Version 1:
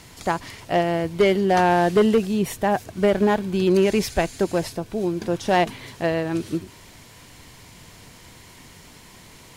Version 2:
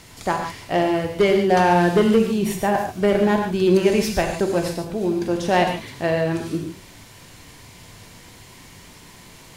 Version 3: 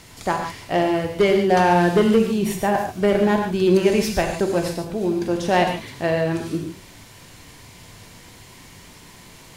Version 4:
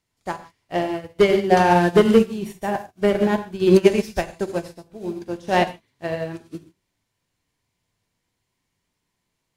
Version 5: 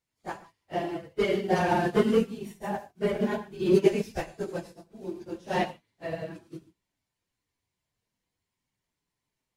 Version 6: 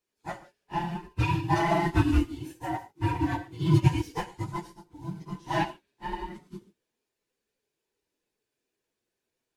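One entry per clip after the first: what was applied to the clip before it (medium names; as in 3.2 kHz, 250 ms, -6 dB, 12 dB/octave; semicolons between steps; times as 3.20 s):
reverberation, pre-delay 3 ms, DRR 3 dB
no audible change
upward expansion 2.5:1, over -37 dBFS; trim +4.5 dB
phase randomisation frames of 50 ms; trim -8.5 dB
every band turned upside down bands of 500 Hz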